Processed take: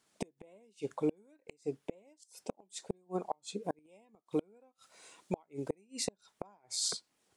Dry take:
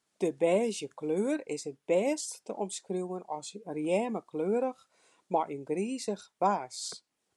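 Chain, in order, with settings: 3.64–5.85 high shelf 2100 Hz +5.5 dB; flipped gate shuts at -26 dBFS, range -38 dB; gain +5 dB

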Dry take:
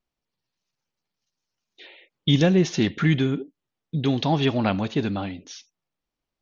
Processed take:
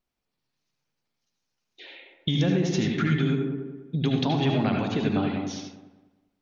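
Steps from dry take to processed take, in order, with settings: compressor 6:1, threshold -23 dBFS, peak gain reduction 9.5 dB; dark delay 0.199 s, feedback 31%, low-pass 1100 Hz, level -6 dB; on a send at -2 dB: reverb RT60 0.40 s, pre-delay 71 ms

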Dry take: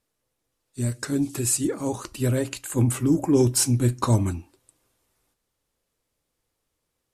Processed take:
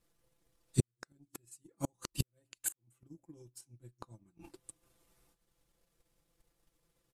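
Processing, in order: comb 5.9 ms, depth 86%; flipped gate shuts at -19 dBFS, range -39 dB; 1.51–3.61 high shelf 4200 Hz +6.5 dB; transient shaper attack +8 dB, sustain -8 dB; flipped gate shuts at -15 dBFS, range -26 dB; low shelf 260 Hz +6 dB; gain -3.5 dB

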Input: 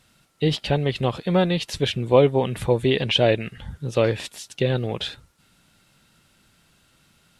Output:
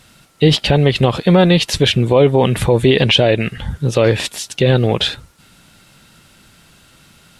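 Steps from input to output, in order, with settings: maximiser +13 dB; gain -1 dB

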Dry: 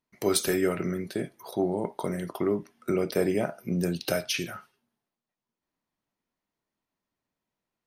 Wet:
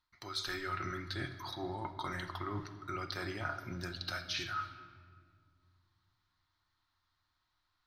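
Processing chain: EQ curve 100 Hz 0 dB, 190 Hz -26 dB, 300 Hz -13 dB, 460 Hz -26 dB, 850 Hz -7 dB, 1300 Hz +2 dB, 2600 Hz -9 dB, 4000 Hz +4 dB, 9200 Hz -21 dB, 15000 Hz -19 dB; reverse; compressor 10:1, threshold -47 dBFS, peak gain reduction 22.5 dB; reverse; shoebox room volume 3600 m³, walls mixed, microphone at 0.93 m; gain +10.5 dB

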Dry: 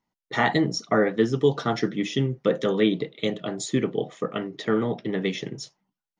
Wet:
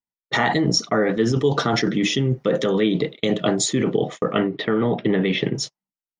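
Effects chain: 4.32–5.55 LPF 3700 Hz 24 dB/oct; gate -39 dBFS, range -30 dB; in parallel at +3 dB: negative-ratio compressor -28 dBFS, ratio -0.5

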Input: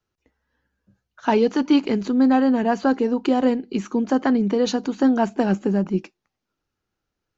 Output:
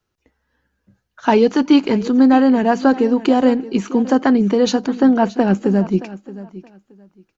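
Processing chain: 4.86–5.55 air absorption 110 m; feedback echo 0.623 s, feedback 20%, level -17 dB; gain +5 dB

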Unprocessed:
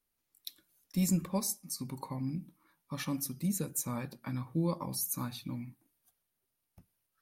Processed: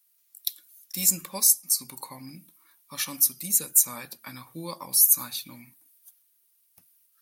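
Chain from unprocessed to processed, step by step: tilt +4.5 dB/oct; gain +2 dB

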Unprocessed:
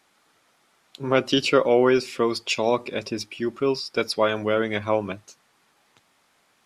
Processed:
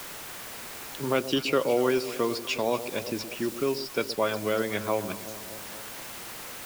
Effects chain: added noise white -39 dBFS; echo with dull and thin repeats by turns 0.119 s, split 850 Hz, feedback 71%, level -12.5 dB; three-band squash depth 40%; gain -5 dB

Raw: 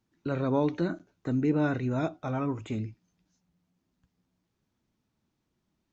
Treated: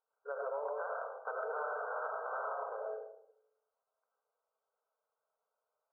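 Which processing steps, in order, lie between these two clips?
0.65–2.89 spectral limiter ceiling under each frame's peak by 29 dB; brick-wall FIR band-pass 420–1600 Hz; reverb RT60 0.75 s, pre-delay 50 ms, DRR -1 dB; compressor 6:1, threshold -32 dBFS, peak gain reduction 10.5 dB; gain -3.5 dB

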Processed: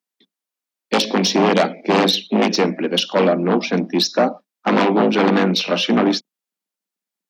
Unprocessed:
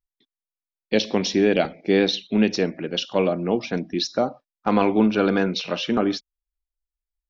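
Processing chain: octaver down 2 oct, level +1 dB; sine folder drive 10 dB, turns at -4 dBFS; Chebyshev high-pass 180 Hz, order 6; gain -4.5 dB

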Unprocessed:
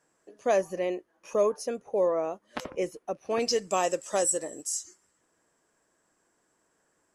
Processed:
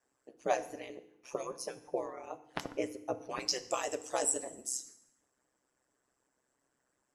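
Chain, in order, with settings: harmonic-percussive split harmonic -18 dB; ring modulator 65 Hz; FDN reverb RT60 0.82 s, low-frequency decay 1.5×, high-frequency decay 0.9×, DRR 10.5 dB

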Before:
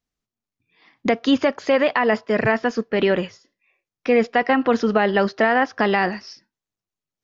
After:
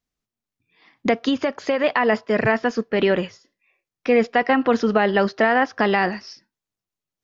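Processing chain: 1.28–1.84 compressor, threshold -17 dBFS, peak gain reduction 5.5 dB

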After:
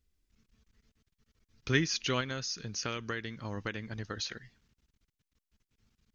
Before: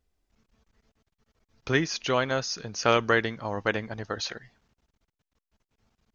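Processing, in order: bell 730 Hz -13.5 dB 1.5 oct; 2.2–4.32 compressor 6:1, threshold -33 dBFS, peak gain reduction 11 dB

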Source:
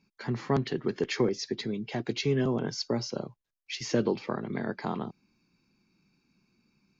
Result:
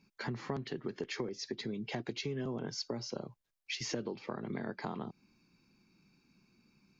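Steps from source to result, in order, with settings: compressor 6:1, threshold -37 dBFS, peak gain reduction 15.5 dB; gain +1.5 dB

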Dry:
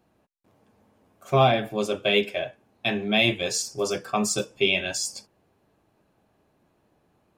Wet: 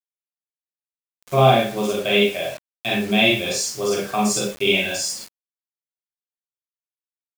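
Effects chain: Schroeder reverb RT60 0.33 s, combs from 31 ms, DRR -3.5 dB; requantised 6-bit, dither none; gain -1 dB

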